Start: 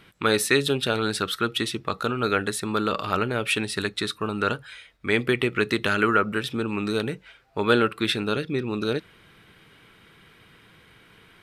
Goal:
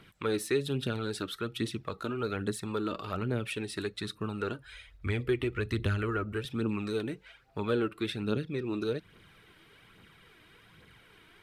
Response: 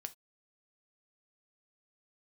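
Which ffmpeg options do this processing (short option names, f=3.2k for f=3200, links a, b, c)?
-filter_complex "[0:a]asettb=1/sr,asplit=3[a][b][c];[a]atrim=end=4.644[d];[b]atrim=start=4.64:end=6.45,asetpts=PTS-STARTPTS,afade=t=in:d=0.004:c=qsin,afade=t=out:st=1.806:d=0.004:c=qsin,lowshelf=f=110:t=q:w=1.5:g=12.5[e];[c]atrim=start=6.446[f];[d][e]acrossfade=d=0.004:c1=hsin:c2=qsin[g];[g][f]acrossfade=d=0.004:c1=qsin:c2=hsin,aphaser=in_gain=1:out_gain=1:delay=3.4:decay=0.46:speed=1.2:type=triangular,acrossover=split=420[h][i];[i]acompressor=threshold=-37dB:ratio=2[j];[h][j]amix=inputs=2:normalize=0,volume=-5.5dB"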